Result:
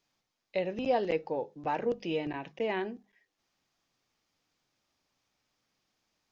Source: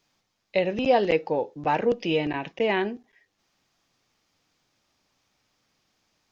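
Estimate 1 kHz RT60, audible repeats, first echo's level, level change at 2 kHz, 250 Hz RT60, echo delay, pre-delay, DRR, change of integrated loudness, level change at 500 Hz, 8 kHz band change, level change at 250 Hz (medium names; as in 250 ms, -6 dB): no reverb, no echo, no echo, -9.5 dB, no reverb, no echo, no reverb, no reverb, -8.0 dB, -7.5 dB, no reading, -7.5 dB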